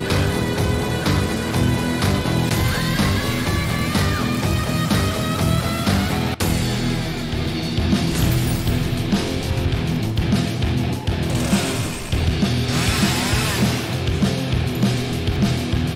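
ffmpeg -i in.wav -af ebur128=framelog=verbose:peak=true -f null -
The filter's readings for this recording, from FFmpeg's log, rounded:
Integrated loudness:
  I:         -20.4 LUFS
  Threshold: -30.4 LUFS
Loudness range:
  LRA:         1.3 LU
  Threshold: -40.4 LUFS
  LRA low:   -21.2 LUFS
  LRA high:  -19.9 LUFS
True peak:
  Peak:       -5.9 dBFS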